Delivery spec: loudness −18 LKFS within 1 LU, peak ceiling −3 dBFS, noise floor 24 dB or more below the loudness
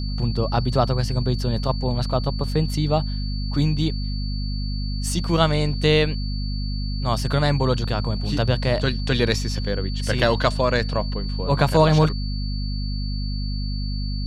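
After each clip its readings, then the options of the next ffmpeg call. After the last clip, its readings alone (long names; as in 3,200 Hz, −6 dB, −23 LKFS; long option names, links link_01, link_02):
mains hum 50 Hz; hum harmonics up to 250 Hz; level of the hum −23 dBFS; interfering tone 4,500 Hz; level of the tone −36 dBFS; integrated loudness −23.0 LKFS; sample peak −3.0 dBFS; target loudness −18.0 LKFS
→ -af "bandreject=frequency=50:width_type=h:width=4,bandreject=frequency=100:width_type=h:width=4,bandreject=frequency=150:width_type=h:width=4,bandreject=frequency=200:width_type=h:width=4,bandreject=frequency=250:width_type=h:width=4"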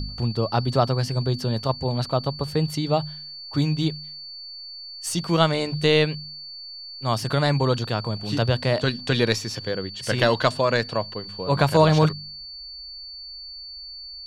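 mains hum none found; interfering tone 4,500 Hz; level of the tone −36 dBFS
→ -af "bandreject=frequency=4500:width=30"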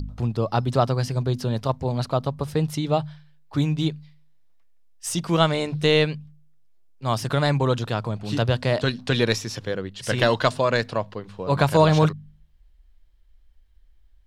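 interfering tone none found; integrated loudness −23.5 LKFS; sample peak −4.0 dBFS; target loudness −18.0 LKFS
→ -af "volume=5.5dB,alimiter=limit=-3dB:level=0:latency=1"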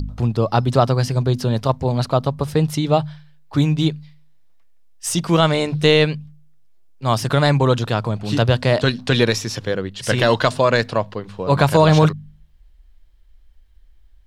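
integrated loudness −18.5 LKFS; sample peak −3.0 dBFS; background noise floor −50 dBFS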